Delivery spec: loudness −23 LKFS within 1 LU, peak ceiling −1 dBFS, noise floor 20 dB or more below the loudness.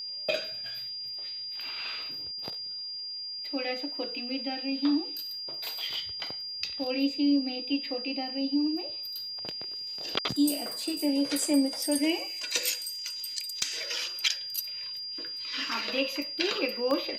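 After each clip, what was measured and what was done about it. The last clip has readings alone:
number of dropouts 3; longest dropout 1.2 ms; interfering tone 4,800 Hz; level of the tone −35 dBFS; integrated loudness −30.5 LKFS; sample peak −11.5 dBFS; target loudness −23.0 LKFS
→ repair the gap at 0:10.73/0:13.62/0:16.91, 1.2 ms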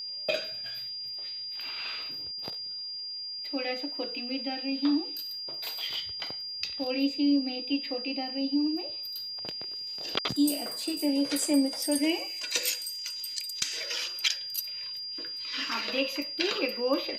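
number of dropouts 0; interfering tone 4,800 Hz; level of the tone −35 dBFS
→ notch filter 4,800 Hz, Q 30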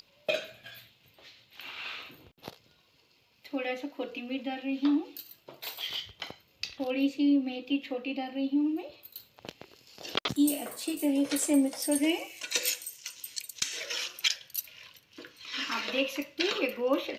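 interfering tone none found; integrated loudness −31.0 LKFS; sample peak −11.0 dBFS; target loudness −23.0 LKFS
→ level +8 dB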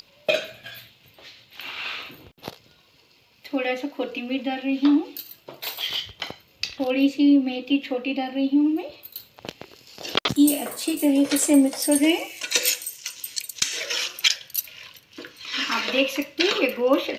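integrated loudness −23.0 LKFS; sample peak −3.0 dBFS; background noise floor −58 dBFS

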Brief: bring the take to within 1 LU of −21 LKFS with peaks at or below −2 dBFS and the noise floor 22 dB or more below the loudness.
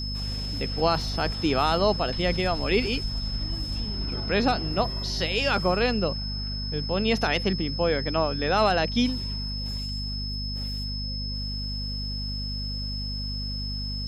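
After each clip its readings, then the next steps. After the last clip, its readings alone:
mains hum 50 Hz; hum harmonics up to 250 Hz; level of the hum −30 dBFS; interfering tone 5,200 Hz; level of the tone −33 dBFS; integrated loudness −26.5 LKFS; sample peak −9.0 dBFS; target loudness −21.0 LKFS
→ hum removal 50 Hz, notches 5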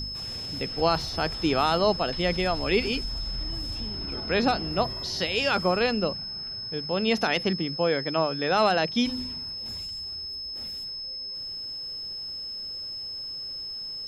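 mains hum none found; interfering tone 5,200 Hz; level of the tone −33 dBFS
→ notch filter 5,200 Hz, Q 30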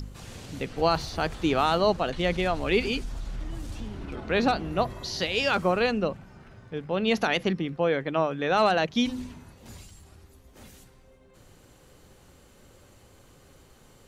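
interfering tone none found; integrated loudness −26.5 LKFS; sample peak −10.0 dBFS; target loudness −21.0 LKFS
→ level +5.5 dB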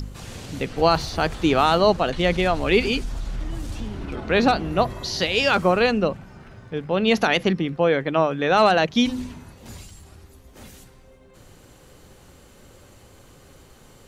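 integrated loudness −21.0 LKFS; sample peak −4.5 dBFS; background noise floor −50 dBFS

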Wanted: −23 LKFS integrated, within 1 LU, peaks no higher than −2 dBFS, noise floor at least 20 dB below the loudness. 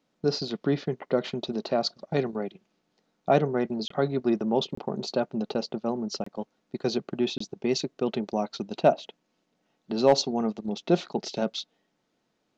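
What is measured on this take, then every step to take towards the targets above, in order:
number of dropouts 4; longest dropout 24 ms; integrated loudness −28.5 LKFS; sample peak −9.0 dBFS; target loudness −23.0 LKFS
→ repair the gap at 0:03.88/0:04.75/0:06.24/0:07.38, 24 ms
level +5.5 dB

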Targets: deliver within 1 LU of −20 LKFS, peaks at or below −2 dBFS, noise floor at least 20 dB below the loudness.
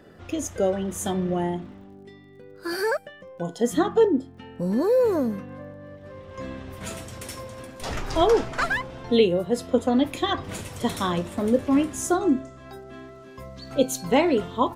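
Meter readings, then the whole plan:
crackle rate 21 per second; integrated loudness −24.5 LKFS; sample peak −7.5 dBFS; target loudness −20.0 LKFS
→ click removal
level +4.5 dB

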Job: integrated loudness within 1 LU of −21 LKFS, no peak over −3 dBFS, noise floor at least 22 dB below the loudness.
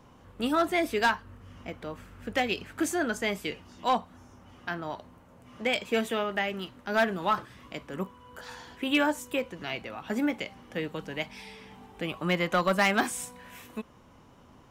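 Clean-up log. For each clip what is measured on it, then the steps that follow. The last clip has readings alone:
share of clipped samples 0.2%; peaks flattened at −17.0 dBFS; integrated loudness −30.0 LKFS; sample peak −17.0 dBFS; target loudness −21.0 LKFS
→ clipped peaks rebuilt −17 dBFS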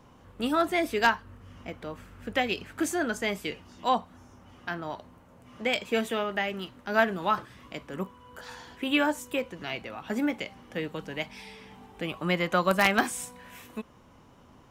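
share of clipped samples 0.0%; integrated loudness −29.0 LKFS; sample peak −8.0 dBFS; target loudness −21.0 LKFS
→ level +8 dB
brickwall limiter −3 dBFS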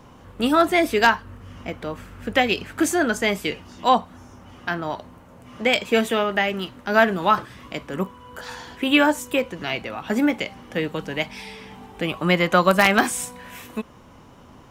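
integrated loudness −21.5 LKFS; sample peak −3.0 dBFS; background noise floor −48 dBFS

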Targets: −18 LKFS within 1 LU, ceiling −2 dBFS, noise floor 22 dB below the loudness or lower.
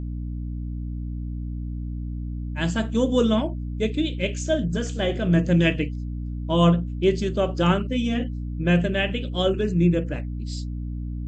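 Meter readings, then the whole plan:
mains hum 60 Hz; hum harmonics up to 300 Hz; level of the hum −27 dBFS; integrated loudness −24.5 LKFS; sample peak −6.0 dBFS; target loudness −18.0 LKFS
→ hum removal 60 Hz, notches 5
level +6.5 dB
brickwall limiter −2 dBFS

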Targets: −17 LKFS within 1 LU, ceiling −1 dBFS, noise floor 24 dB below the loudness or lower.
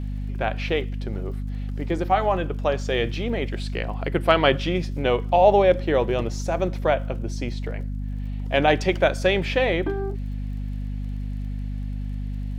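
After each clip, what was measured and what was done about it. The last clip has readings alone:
crackle rate 40 per second; mains hum 50 Hz; hum harmonics up to 250 Hz; level of the hum −26 dBFS; integrated loudness −24.0 LKFS; sample peak −2.5 dBFS; target loudness −17.0 LKFS
→ click removal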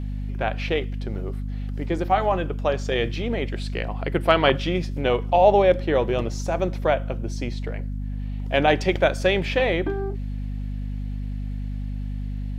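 crackle rate 0.16 per second; mains hum 50 Hz; hum harmonics up to 250 Hz; level of the hum −26 dBFS
→ mains-hum notches 50/100/150/200/250 Hz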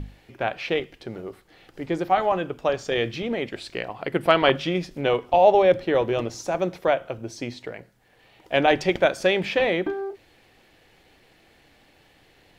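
mains hum none found; integrated loudness −23.5 LKFS; sample peak −2.5 dBFS; target loudness −17.0 LKFS
→ level +6.5 dB
brickwall limiter −1 dBFS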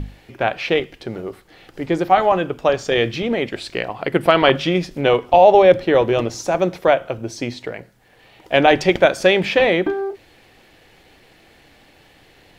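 integrated loudness −17.0 LKFS; sample peak −1.0 dBFS; background noise floor −52 dBFS

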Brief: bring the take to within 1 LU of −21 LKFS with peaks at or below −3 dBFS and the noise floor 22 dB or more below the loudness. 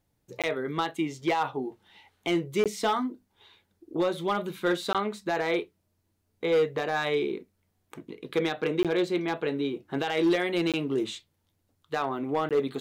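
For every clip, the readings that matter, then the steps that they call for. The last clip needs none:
share of clipped samples 0.7%; peaks flattened at −18.5 dBFS; number of dropouts 6; longest dropout 17 ms; integrated loudness −29.0 LKFS; sample peak −18.5 dBFS; target loudness −21.0 LKFS
→ clipped peaks rebuilt −18.5 dBFS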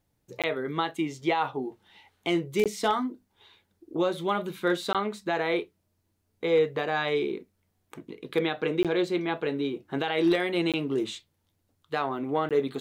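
share of clipped samples 0.0%; number of dropouts 6; longest dropout 17 ms
→ repair the gap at 0:00.42/0:02.64/0:04.93/0:08.83/0:10.72/0:12.49, 17 ms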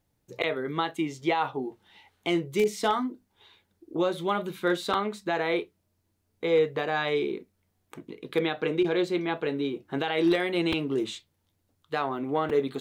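number of dropouts 0; integrated loudness −28.5 LKFS; sample peak −11.0 dBFS; target loudness −21.0 LKFS
→ level +7.5 dB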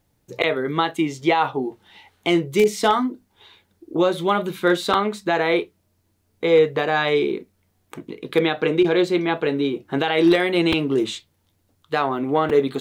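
integrated loudness −21.0 LKFS; sample peak −3.5 dBFS; background noise floor −67 dBFS

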